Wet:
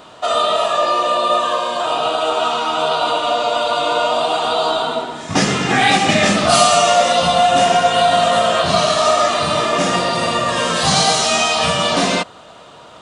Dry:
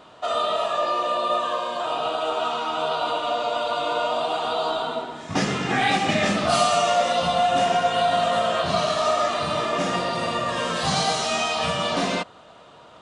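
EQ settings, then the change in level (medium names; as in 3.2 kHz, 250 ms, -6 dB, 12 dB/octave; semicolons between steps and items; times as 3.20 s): treble shelf 5.7 kHz +8 dB; +7.0 dB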